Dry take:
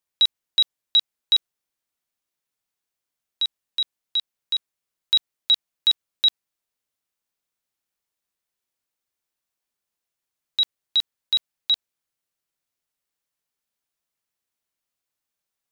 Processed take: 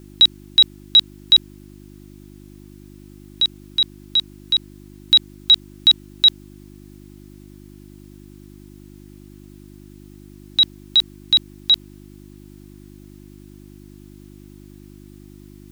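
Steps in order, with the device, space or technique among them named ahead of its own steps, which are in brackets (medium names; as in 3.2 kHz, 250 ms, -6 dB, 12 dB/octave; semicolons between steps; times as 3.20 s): video cassette with head-switching buzz (mains buzz 50 Hz, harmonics 7, -49 dBFS -1 dB/octave; white noise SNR 35 dB); trim +6 dB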